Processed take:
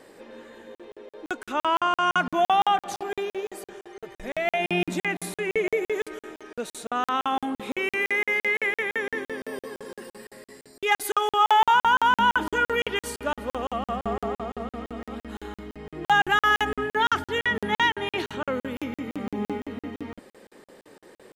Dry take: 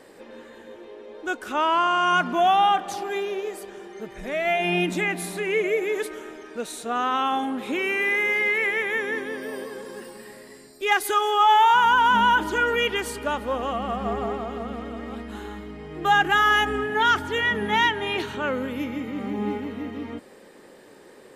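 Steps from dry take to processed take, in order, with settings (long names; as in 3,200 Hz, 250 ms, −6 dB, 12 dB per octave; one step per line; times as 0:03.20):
0:03.73–0:04.24: parametric band 210 Hz −15 dB 0.46 octaves
regular buffer underruns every 0.17 s, samples 2,048, zero, from 0:00.75
level −1 dB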